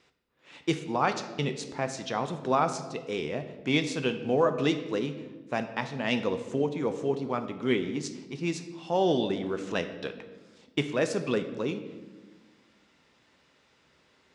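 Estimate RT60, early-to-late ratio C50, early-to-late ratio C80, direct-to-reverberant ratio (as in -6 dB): 1.3 s, 10.5 dB, 12.0 dB, 7.5 dB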